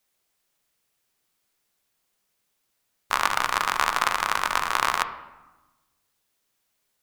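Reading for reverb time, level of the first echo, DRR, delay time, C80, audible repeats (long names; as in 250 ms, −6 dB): 1.1 s, no echo audible, 8.5 dB, no echo audible, 13.0 dB, no echo audible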